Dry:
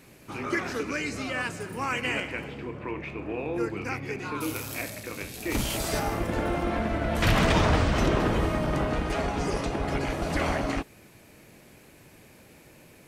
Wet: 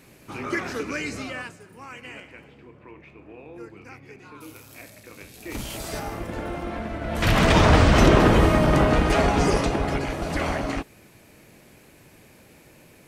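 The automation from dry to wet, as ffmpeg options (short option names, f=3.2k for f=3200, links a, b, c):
-af "volume=21dB,afade=t=out:st=1.15:d=0.43:silence=0.237137,afade=t=in:st=4.65:d=1.25:silence=0.398107,afade=t=in:st=7:d=0.96:silence=0.251189,afade=t=out:st=9.43:d=0.63:silence=0.421697"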